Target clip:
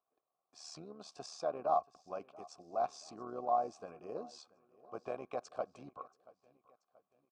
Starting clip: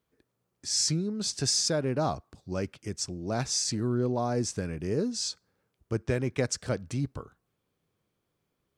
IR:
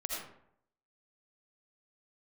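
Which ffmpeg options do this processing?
-filter_complex "[0:a]tremolo=f=76:d=0.621,asplit=3[a][b][c];[a]bandpass=f=730:t=q:w=8,volume=0dB[d];[b]bandpass=f=1.09k:t=q:w=8,volume=-6dB[e];[c]bandpass=f=2.44k:t=q:w=8,volume=-9dB[f];[d][e][f]amix=inputs=3:normalize=0,atempo=1.2,equalizer=f=100:t=o:w=0.67:g=-6,equalizer=f=1k:t=o:w=0.67:g=6,equalizer=f=2.5k:t=o:w=0.67:g=-8,asplit=2[g][h];[h]aecho=0:1:681|1362|2043:0.0794|0.0357|0.0161[i];[g][i]amix=inputs=2:normalize=0,volume=5.5dB"

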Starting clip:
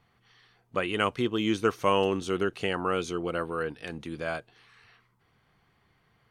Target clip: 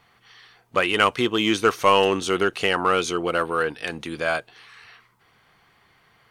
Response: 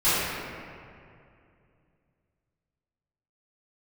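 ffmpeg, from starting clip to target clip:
-filter_complex "[0:a]lowshelf=f=390:g=-10.5,asplit=2[a][b];[b]asoftclip=type=hard:threshold=-27dB,volume=-5dB[c];[a][c]amix=inputs=2:normalize=0,volume=7.5dB"

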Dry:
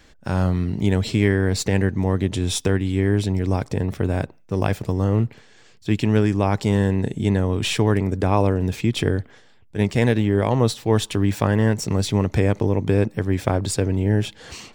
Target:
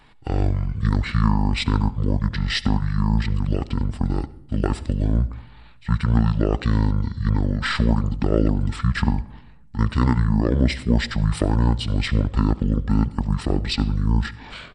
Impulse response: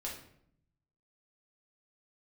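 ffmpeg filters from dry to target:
-filter_complex "[0:a]highshelf=f=3.9k:g=3.5,asetrate=23361,aresample=44100,atempo=1.88775,asplit=2[a][b];[1:a]atrim=start_sample=2205,adelay=70[c];[b][c]afir=irnorm=-1:irlink=0,volume=-18dB[d];[a][d]amix=inputs=2:normalize=0"

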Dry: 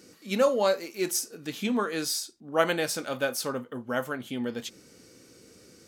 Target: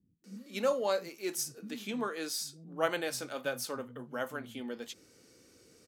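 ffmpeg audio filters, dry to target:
-filter_complex "[0:a]acrossover=split=190[a][b];[b]adelay=240[c];[a][c]amix=inputs=2:normalize=0,volume=-6.5dB"

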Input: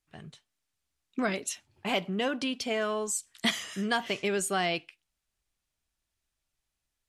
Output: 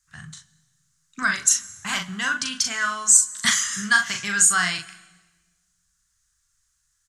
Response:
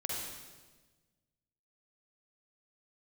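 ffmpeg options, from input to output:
-filter_complex "[0:a]firequalizer=gain_entry='entry(130,0);entry(240,-14);entry(460,-27);entry(1100,1);entry(1600,7);entry(2400,-7);entry(6700,13);entry(13000,-3)':delay=0.05:min_phase=1,aecho=1:1:39|63:0.562|0.141,asplit=2[a][b];[1:a]atrim=start_sample=2205,adelay=62[c];[b][c]afir=irnorm=-1:irlink=0,volume=-22.5dB[d];[a][d]amix=inputs=2:normalize=0,volume=7.5dB"

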